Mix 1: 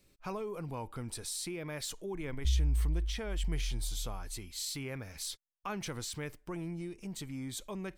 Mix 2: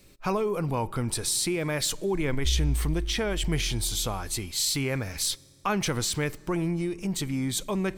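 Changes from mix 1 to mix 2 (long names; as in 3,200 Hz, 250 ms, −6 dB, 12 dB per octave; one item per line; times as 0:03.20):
speech +11.0 dB
reverb: on, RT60 2.7 s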